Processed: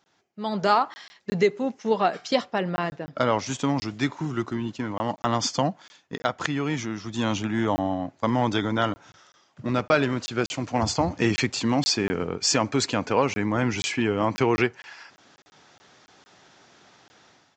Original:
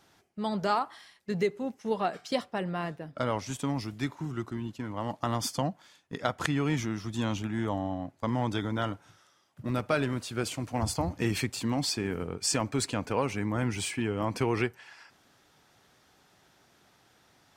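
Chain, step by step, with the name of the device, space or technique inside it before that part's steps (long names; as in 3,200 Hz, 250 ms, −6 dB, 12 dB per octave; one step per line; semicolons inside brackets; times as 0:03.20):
call with lost packets (high-pass filter 180 Hz 6 dB per octave; downsampling to 16,000 Hz; automatic gain control gain up to 13.5 dB; dropped packets of 20 ms random)
level −4.5 dB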